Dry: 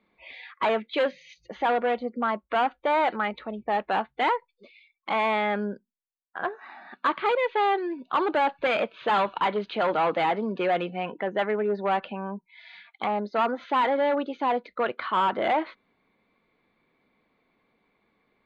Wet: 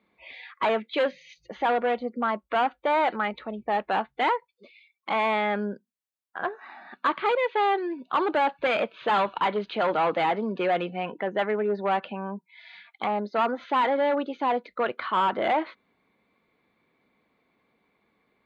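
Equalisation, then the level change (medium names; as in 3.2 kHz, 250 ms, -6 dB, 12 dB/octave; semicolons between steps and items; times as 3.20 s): high-pass 43 Hz; 0.0 dB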